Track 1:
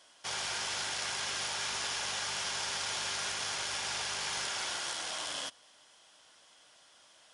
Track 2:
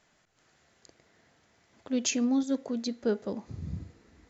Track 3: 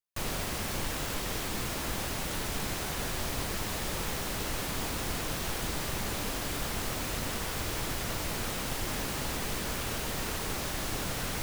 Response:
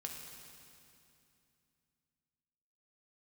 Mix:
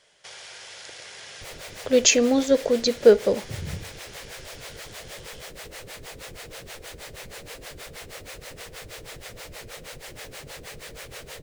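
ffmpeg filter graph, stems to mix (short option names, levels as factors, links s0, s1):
-filter_complex "[0:a]volume=0.422[s0];[1:a]dynaudnorm=f=110:g=17:m=3.98,volume=0.668[s1];[2:a]acrossover=split=440[s2][s3];[s2]aeval=exprs='val(0)*(1-1/2+1/2*cos(2*PI*6.3*n/s))':c=same[s4];[s3]aeval=exprs='val(0)*(1-1/2-1/2*cos(2*PI*6.3*n/s))':c=same[s5];[s4][s5]amix=inputs=2:normalize=0,adelay=1250,volume=1.19,asplit=2[s6][s7];[s7]volume=0.075[s8];[s0][s6]amix=inputs=2:normalize=0,acompressor=threshold=0.00447:ratio=2.5,volume=1[s9];[3:a]atrim=start_sample=2205[s10];[s8][s10]afir=irnorm=-1:irlink=0[s11];[s1][s9][s11]amix=inputs=3:normalize=0,equalizer=f=125:t=o:w=1:g=3,equalizer=f=250:t=o:w=1:g=-7,equalizer=f=500:t=o:w=1:g=12,equalizer=f=1000:t=o:w=1:g=-3,equalizer=f=2000:t=o:w=1:g=7,equalizer=f=4000:t=o:w=1:g=4,equalizer=f=8000:t=o:w=1:g=4"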